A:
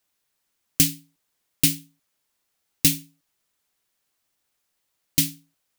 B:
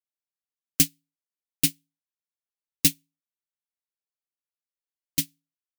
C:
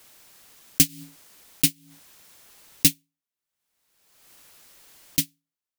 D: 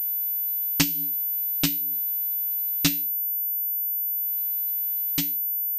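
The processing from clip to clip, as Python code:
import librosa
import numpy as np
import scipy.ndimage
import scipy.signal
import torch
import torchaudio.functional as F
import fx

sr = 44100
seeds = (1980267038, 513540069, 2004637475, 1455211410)

y1 = fx.peak_eq(x, sr, hz=110.0, db=-8.5, octaves=0.51)
y1 = fx.upward_expand(y1, sr, threshold_db=-31.0, expansion=2.5)
y2 = fx.pre_swell(y1, sr, db_per_s=40.0)
y2 = y2 * librosa.db_to_amplitude(2.0)
y3 = fx.comb_fb(y2, sr, f0_hz=57.0, decay_s=0.36, harmonics='all', damping=0.0, mix_pct=60)
y3 = fx.pwm(y3, sr, carrier_hz=14000.0)
y3 = y3 * librosa.db_to_amplitude(4.5)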